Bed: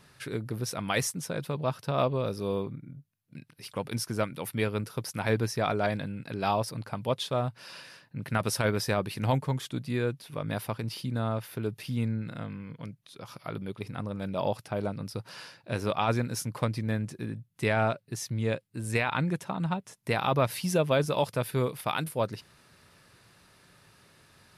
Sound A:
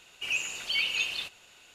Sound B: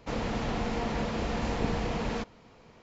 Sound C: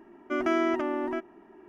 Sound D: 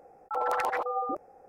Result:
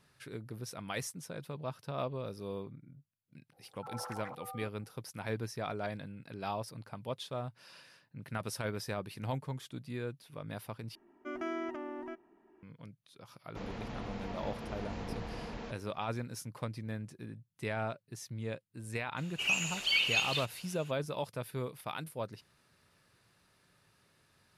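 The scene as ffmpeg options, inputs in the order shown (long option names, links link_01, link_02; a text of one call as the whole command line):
ffmpeg -i bed.wav -i cue0.wav -i cue1.wav -i cue2.wav -i cue3.wav -filter_complex "[0:a]volume=-10dB[link_01];[2:a]lowpass=6500[link_02];[link_01]asplit=2[link_03][link_04];[link_03]atrim=end=10.954[link_05];[3:a]atrim=end=1.68,asetpts=PTS-STARTPTS,volume=-12dB[link_06];[link_04]atrim=start=12.626[link_07];[4:a]atrim=end=1.48,asetpts=PTS-STARTPTS,volume=-16dB,afade=type=in:duration=0.004:curve=hsin,afade=type=out:start_time=1.476:duration=0.004:curve=hsin,adelay=3520[link_08];[link_02]atrim=end=2.82,asetpts=PTS-STARTPTS,volume=-11dB,afade=type=in:duration=0.1,afade=type=out:start_time=2.72:duration=0.1,adelay=594468S[link_09];[1:a]atrim=end=1.74,asetpts=PTS-STARTPTS,volume=-0.5dB,afade=type=in:duration=0.004:curve=hsin,afade=type=out:start_time=1.736:duration=0.004:curve=hsin,adelay=19170[link_10];[link_05][link_06]acrossfade=duration=0.004:curve1=hsin:curve2=hsin[link_11];[link_11][link_07]acrossfade=duration=0.004:curve1=hsin:curve2=hsin[link_12];[link_12][link_08][link_09][link_10]amix=inputs=4:normalize=0" out.wav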